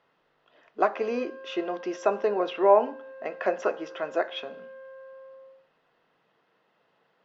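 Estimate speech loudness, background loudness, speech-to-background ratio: −27.5 LKFS, −45.0 LKFS, 17.5 dB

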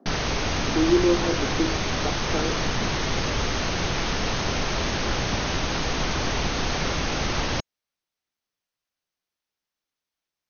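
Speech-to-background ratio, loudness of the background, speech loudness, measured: 0.0 dB, −26.0 LKFS, −26.0 LKFS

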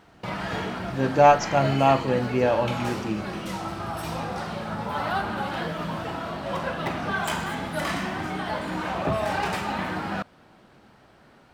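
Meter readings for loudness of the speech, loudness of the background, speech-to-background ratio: −22.0 LKFS, −30.0 LKFS, 8.0 dB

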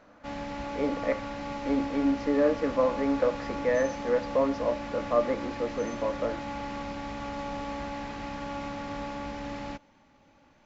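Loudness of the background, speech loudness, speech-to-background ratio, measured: −36.5 LKFS, −29.0 LKFS, 7.5 dB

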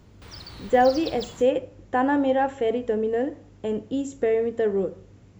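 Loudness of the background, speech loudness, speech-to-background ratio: −39.5 LKFS, −24.5 LKFS, 15.0 dB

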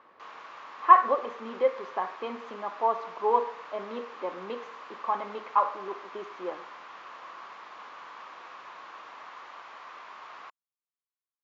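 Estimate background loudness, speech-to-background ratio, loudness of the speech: −45.5 LKFS, 17.0 dB, −28.5 LKFS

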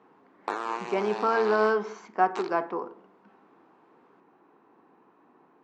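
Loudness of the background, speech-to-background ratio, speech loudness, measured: −36.0 LKFS, 9.0 dB, −27.0 LKFS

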